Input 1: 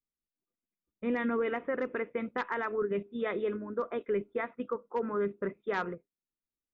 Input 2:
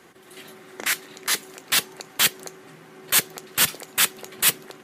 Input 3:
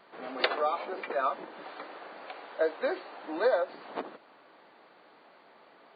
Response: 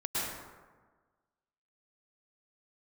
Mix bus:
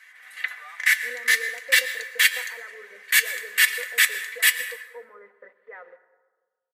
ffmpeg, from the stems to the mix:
-filter_complex "[0:a]aeval=exprs='val(0)*gte(abs(val(0)),0.00794)':channel_layout=same,lowpass=frequency=530:width_type=q:width=4.9,volume=1dB,asplit=3[link_01][link_02][link_03];[link_02]volume=-21dB[link_04];[1:a]aecho=1:1:1.8:0.36,flanger=delay=9.9:depth=3.6:regen=81:speed=0.38:shape=triangular,volume=-2dB,asplit=2[link_05][link_06];[link_06]volume=-16dB[link_07];[2:a]lowpass=3100,volume=-10dB[link_08];[link_03]apad=whole_len=262516[link_09];[link_08][link_09]sidechaincompress=threshold=-38dB:ratio=8:attack=16:release=344[link_10];[3:a]atrim=start_sample=2205[link_11];[link_04][link_07]amix=inputs=2:normalize=0[link_12];[link_12][link_11]afir=irnorm=-1:irlink=0[link_13];[link_01][link_05][link_10][link_13]amix=inputs=4:normalize=0,highpass=frequency=1900:width_type=q:width=7.9,aecho=1:1:4:0.51"

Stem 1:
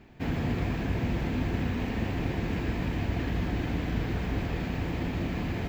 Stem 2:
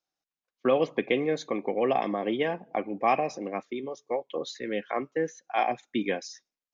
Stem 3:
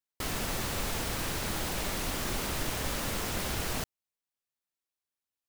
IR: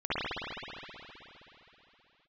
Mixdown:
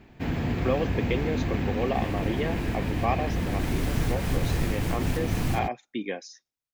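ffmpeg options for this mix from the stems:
-filter_complex "[0:a]volume=1.5dB[link_01];[1:a]volume=-3.5dB,asplit=2[link_02][link_03];[2:a]lowshelf=frequency=200:width_type=q:width=1.5:gain=12.5,adelay=1750,volume=-4.5dB,afade=type=in:start_time=3.32:duration=0.5:silence=0.316228[link_04];[link_03]apad=whole_len=319045[link_05];[link_04][link_05]sidechaincompress=threshold=-34dB:ratio=8:attack=34:release=151[link_06];[link_01][link_02][link_06]amix=inputs=3:normalize=0"

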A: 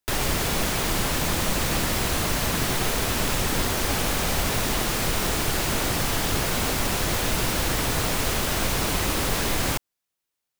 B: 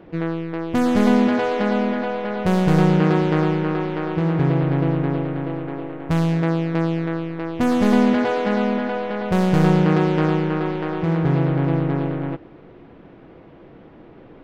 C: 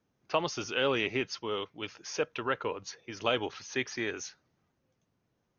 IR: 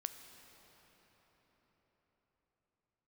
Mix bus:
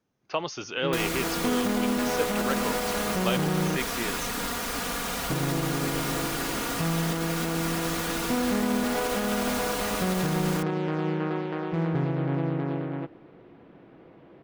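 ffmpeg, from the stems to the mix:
-filter_complex "[0:a]equalizer=frequency=1300:width=2.3:gain=5,aecho=1:1:4.2:0.65,adelay=850,volume=-7.5dB[link_01];[1:a]adelay=700,volume=-6dB,asplit=3[link_02][link_03][link_04];[link_02]atrim=end=3.77,asetpts=PTS-STARTPTS,afade=type=out:start_time=3.766:duration=0.004:curve=hsin[link_05];[link_03]atrim=start=3.77:end=5.3,asetpts=PTS-STARTPTS,volume=0[link_06];[link_04]atrim=start=5.3,asetpts=PTS-STARTPTS,afade=type=in:duration=0.004:curve=hsin[link_07];[link_05][link_06][link_07]concat=n=3:v=0:a=1[link_08];[2:a]volume=0dB[link_09];[link_01][link_08]amix=inputs=2:normalize=0,highpass=frequency=61:poles=1,alimiter=limit=-17dB:level=0:latency=1:release=55,volume=0dB[link_10];[link_09][link_10]amix=inputs=2:normalize=0,equalizer=frequency=66:width_type=o:width=0.77:gain=-6.5"

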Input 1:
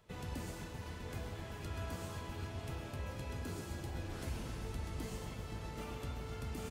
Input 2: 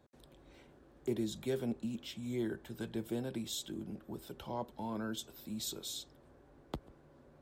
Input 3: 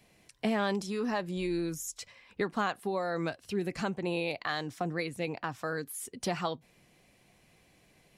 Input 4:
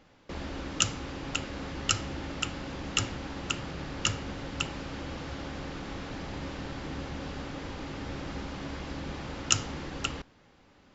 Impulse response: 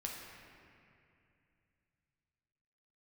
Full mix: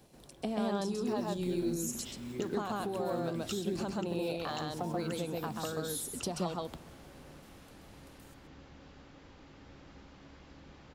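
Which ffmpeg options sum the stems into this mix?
-filter_complex "[0:a]aderivative,adelay=1650,volume=-9dB,asplit=2[link_01][link_02];[link_02]volume=-12.5dB[link_03];[1:a]alimiter=level_in=7.5dB:limit=-24dB:level=0:latency=1:release=105,volume=-7.5dB,acrusher=bits=5:mode=log:mix=0:aa=0.000001,volume=1.5dB,asplit=2[link_04][link_05];[link_05]volume=-8.5dB[link_06];[2:a]equalizer=frequency=2000:width=1.5:gain=-14.5,volume=1.5dB,asplit=3[link_07][link_08][link_09];[link_08]volume=-18dB[link_10];[link_09]volume=-5.5dB[link_11];[3:a]adelay=1600,volume=-16.5dB[link_12];[link_01][link_04]amix=inputs=2:normalize=0,acompressor=threshold=-54dB:ratio=2,volume=0dB[link_13];[link_07][link_12]amix=inputs=2:normalize=0,acompressor=threshold=-35dB:ratio=6,volume=0dB[link_14];[4:a]atrim=start_sample=2205[link_15];[link_06][link_10]amix=inputs=2:normalize=0[link_16];[link_16][link_15]afir=irnorm=-1:irlink=0[link_17];[link_03][link_11]amix=inputs=2:normalize=0,aecho=0:1:132:1[link_18];[link_13][link_14][link_17][link_18]amix=inputs=4:normalize=0"

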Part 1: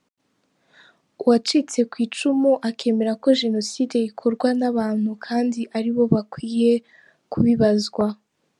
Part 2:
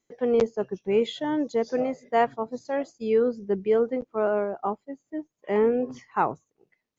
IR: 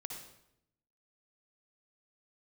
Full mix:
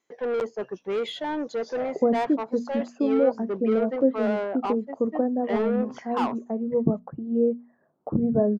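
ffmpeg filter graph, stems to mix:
-filter_complex "[0:a]lowpass=frequency=1100:width=0.5412,lowpass=frequency=1100:width=1.3066,bandreject=frequency=60:width_type=h:width=6,bandreject=frequency=120:width_type=h:width=6,bandreject=frequency=180:width_type=h:width=6,bandreject=frequency=240:width_type=h:width=6,adelay=750,volume=-4.5dB[link_01];[1:a]equalizer=frequency=1000:width_type=o:width=0.22:gain=3.5,asplit=2[link_02][link_03];[link_03]highpass=frequency=720:poles=1,volume=22dB,asoftclip=type=tanh:threshold=-9.5dB[link_04];[link_02][link_04]amix=inputs=2:normalize=0,lowpass=frequency=2500:poles=1,volume=-6dB,volume=-9.5dB[link_05];[link_01][link_05]amix=inputs=2:normalize=0"

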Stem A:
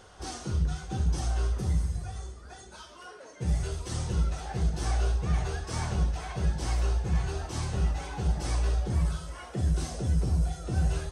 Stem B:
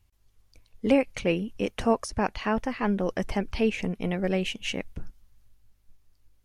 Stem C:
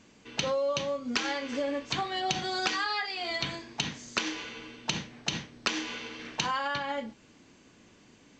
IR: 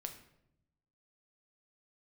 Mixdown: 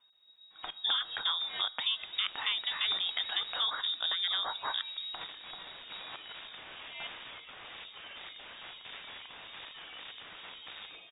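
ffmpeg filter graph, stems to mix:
-filter_complex "[0:a]highpass=220,aeval=exprs='(mod(44.7*val(0)+1,2)-1)/44.7':channel_layout=same,adelay=1800,volume=-7.5dB[link_01];[1:a]volume=-3dB,asplit=2[link_02][link_03];[link_03]volume=-9dB[link_04];[2:a]aeval=exprs='val(0)*pow(10,-39*if(lt(mod(-2.2*n/s,1),2*abs(-2.2)/1000),1-mod(-2.2*n/s,1)/(2*abs(-2.2)/1000),(mod(-2.2*n/s,1)-2*abs(-2.2)/1000)/(1-2*abs(-2.2)/1000))/20)':channel_layout=same,adelay=250,volume=-9.5dB,asplit=2[link_05][link_06];[link_06]volume=-4dB[link_07];[3:a]atrim=start_sample=2205[link_08];[link_04][link_07]amix=inputs=2:normalize=0[link_09];[link_09][link_08]afir=irnorm=-1:irlink=0[link_10];[link_01][link_02][link_05][link_10]amix=inputs=4:normalize=0,acrossover=split=120|1900[link_11][link_12][link_13];[link_11]acompressor=threshold=-41dB:ratio=4[link_14];[link_12]acompressor=threshold=-31dB:ratio=4[link_15];[link_13]acompressor=threshold=-42dB:ratio=4[link_16];[link_14][link_15][link_16]amix=inputs=3:normalize=0,crystalizer=i=3:c=0,lowpass=frequency=3200:width_type=q:width=0.5098,lowpass=frequency=3200:width_type=q:width=0.6013,lowpass=frequency=3200:width_type=q:width=0.9,lowpass=frequency=3200:width_type=q:width=2.563,afreqshift=-3800"

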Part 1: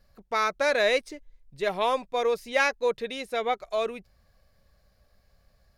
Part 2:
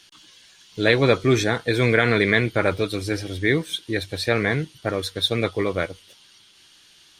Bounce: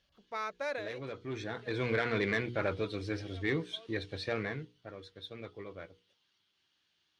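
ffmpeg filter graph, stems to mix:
ffmpeg -i stem1.wav -i stem2.wav -filter_complex "[0:a]volume=-11.5dB[link_01];[1:a]lowpass=5900,asoftclip=type=tanh:threshold=-11.5dB,volume=-9.5dB,afade=type=in:start_time=1.22:duration=0.72:silence=0.251189,afade=type=out:start_time=4.26:duration=0.46:silence=0.281838,asplit=2[link_02][link_03];[link_03]apad=whole_len=254464[link_04];[link_01][link_04]sidechaincompress=threshold=-56dB:ratio=3:attack=49:release=675[link_05];[link_05][link_02]amix=inputs=2:normalize=0,highpass=50,equalizer=frequency=12000:width=0.4:gain=-8.5,bandreject=frequency=60:width_type=h:width=6,bandreject=frequency=120:width_type=h:width=6,bandreject=frequency=180:width_type=h:width=6,bandreject=frequency=240:width_type=h:width=6,bandreject=frequency=300:width_type=h:width=6,bandreject=frequency=360:width_type=h:width=6,bandreject=frequency=420:width_type=h:width=6,bandreject=frequency=480:width_type=h:width=6" out.wav

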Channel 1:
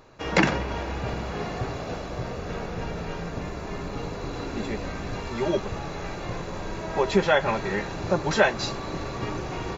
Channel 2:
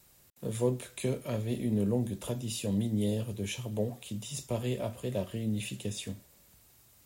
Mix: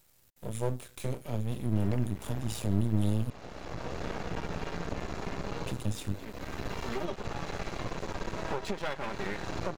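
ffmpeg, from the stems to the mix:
ffmpeg -i stem1.wav -i stem2.wav -filter_complex "[0:a]acompressor=threshold=-29dB:ratio=12,adelay=1550,volume=2dB[link_01];[1:a]asubboost=boost=4.5:cutoff=170,volume=0.5dB,asplit=3[link_02][link_03][link_04];[link_02]atrim=end=3.3,asetpts=PTS-STARTPTS,afade=type=out:start_time=3.296:duration=0.004:curve=hsin[link_05];[link_03]atrim=start=3.3:end=5.67,asetpts=PTS-STARTPTS,volume=0[link_06];[link_04]atrim=start=5.67,asetpts=PTS-STARTPTS,afade=type=in:duration=0.004:curve=hsin[link_07];[link_05][link_06][link_07]concat=n=3:v=0:a=1,asplit=2[link_08][link_09];[link_09]apad=whole_len=499291[link_10];[link_01][link_10]sidechaincompress=threshold=-36dB:ratio=10:attack=27:release=673[link_11];[link_11][link_08]amix=inputs=2:normalize=0,aeval=exprs='max(val(0),0)':channel_layout=same" out.wav

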